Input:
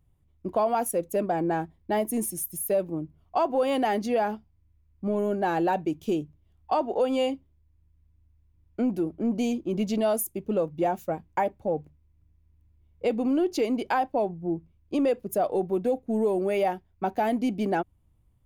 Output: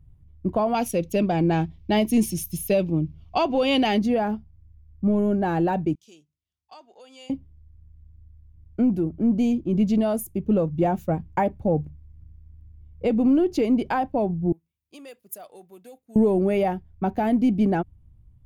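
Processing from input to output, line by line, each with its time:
0:00.74–0:03.99: flat-topped bell 3,800 Hz +13 dB
0:05.95–0:07.30: resonant band-pass 6,000 Hz, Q 1.6
0:14.52–0:16.16: first difference
whole clip: bass and treble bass +14 dB, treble −4 dB; speech leveller 2 s

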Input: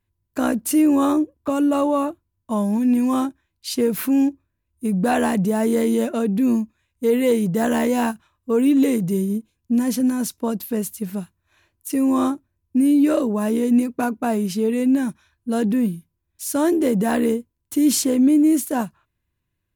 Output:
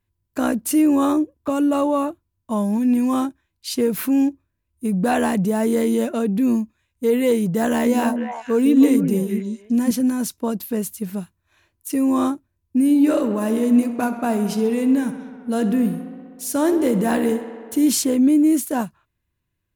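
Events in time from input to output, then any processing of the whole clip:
0:07.70–0:09.91: echo through a band-pass that steps 154 ms, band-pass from 280 Hz, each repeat 1.4 octaves, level −2 dB
0:12.81–0:17.90: tape delay 65 ms, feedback 88%, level −11 dB, low-pass 5,300 Hz

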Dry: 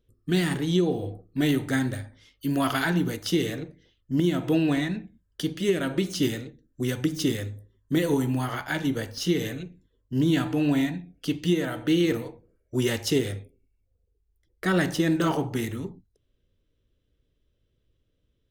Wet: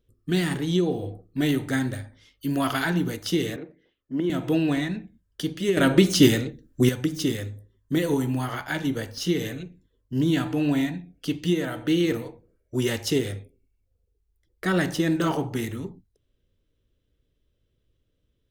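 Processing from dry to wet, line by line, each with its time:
0:03.56–0:04.30: three-way crossover with the lows and the highs turned down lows −17 dB, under 210 Hz, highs −17 dB, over 2,600 Hz
0:05.77–0:06.89: clip gain +9 dB

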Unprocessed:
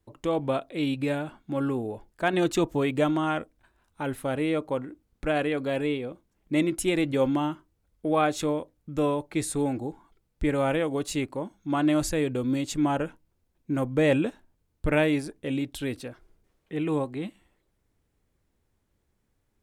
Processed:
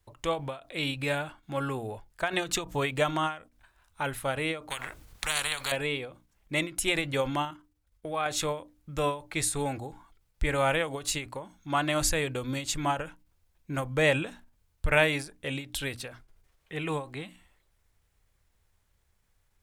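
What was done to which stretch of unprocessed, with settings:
0:04.70–0:05.72: every bin compressed towards the loudest bin 4 to 1
0:07.45–0:08.26: output level in coarse steps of 10 dB
whole clip: parametric band 280 Hz −14.5 dB 2 octaves; mains-hum notches 60/120/180/240/300 Hz; every ending faded ahead of time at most 160 dB per second; level +6 dB

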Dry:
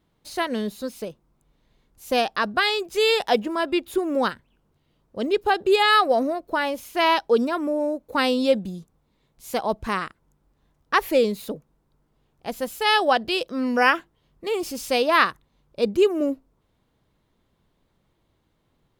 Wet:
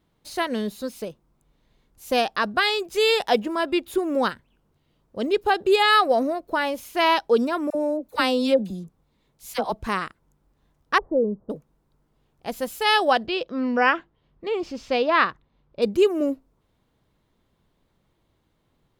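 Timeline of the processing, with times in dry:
0:07.70–0:09.72: all-pass dispersion lows, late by 51 ms, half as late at 930 Hz
0:10.98–0:11.50: Gaussian smoothing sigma 11 samples
0:13.26–0:15.82: high-frequency loss of the air 180 metres

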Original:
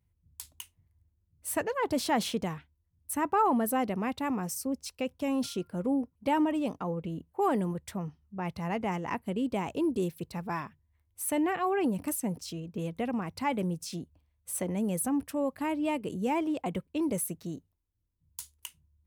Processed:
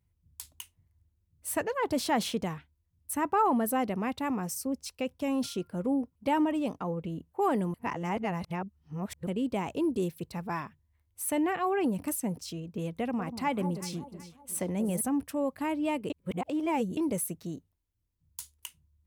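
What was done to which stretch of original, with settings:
0:07.74–0:09.27: reverse
0:13.01–0:15.01: delay that swaps between a low-pass and a high-pass 187 ms, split 1,000 Hz, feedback 60%, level −9.5 dB
0:16.10–0:16.97: reverse

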